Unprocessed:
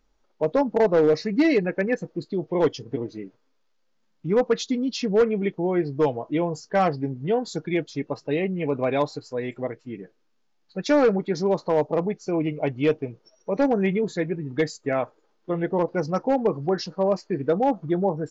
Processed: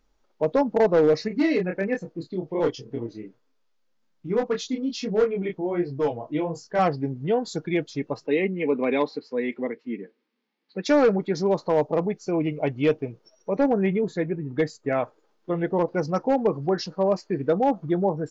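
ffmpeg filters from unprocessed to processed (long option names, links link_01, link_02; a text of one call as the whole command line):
ffmpeg -i in.wav -filter_complex "[0:a]asettb=1/sr,asplit=3[link_01][link_02][link_03];[link_01]atrim=end=1.284[link_04];[link_02]atrim=start=1.28:end=6.79,asetpts=PTS-STARTPTS,afade=type=in:duration=0.004:curve=qsin,afade=type=out:start_time=5.506:duration=0.004:curve=qsin,flanger=delay=22.5:depth=5:speed=1.3[link_05];[link_03]atrim=start=6.786[link_06];[link_04][link_05]acrossfade=duration=0.004:curve1=hsin:curve2=qsin[link_07];[link_07][link_06]acrossfade=duration=0.004:curve1=qsin:curve2=hsin,asettb=1/sr,asplit=3[link_08][link_09][link_10];[link_08]atrim=end=8.264[link_11];[link_09]atrim=start=8.26:end=10.85,asetpts=PTS-STARTPTS,afade=type=in:duration=0.004:curve=qsin,afade=type=out:start_time=2.586:duration=0.004:curve=qsin,highpass=frequency=200:width=0.5412,highpass=frequency=200:width=1.3066,equalizer=frequency=230:width_type=q:width=4:gain=8,equalizer=frequency=450:width_type=q:width=4:gain=4,equalizer=frequency=660:width_type=q:width=4:gain=-8,equalizer=frequency=1400:width_type=q:width=4:gain=-4,equalizer=frequency=2100:width_type=q:width=4:gain=6,lowpass=frequency=4600:width=0.5412,lowpass=frequency=4600:width=1.3066[link_12];[link_10]atrim=start=10.846[link_13];[link_11][link_12]acrossfade=duration=0.004:curve1=hsin:curve2=qsin[link_14];[link_14][link_13]acrossfade=duration=0.004:curve1=qsin:curve2=hsin,asettb=1/sr,asplit=3[link_15][link_16][link_17];[link_15]atrim=end=13.554[link_18];[link_16]atrim=start=13.55:end=14.91,asetpts=PTS-STARTPTS,afade=type=in:duration=0.004:curve=qsin,afade=type=out:start_time=1.356:duration=0.004:curve=qsin,highshelf=frequency=2900:gain=-8[link_19];[link_17]atrim=start=14.906[link_20];[link_18][link_19]acrossfade=duration=0.004:curve1=hsin:curve2=qsin[link_21];[link_21][link_20]acrossfade=duration=0.004:curve1=qsin:curve2=hsin" out.wav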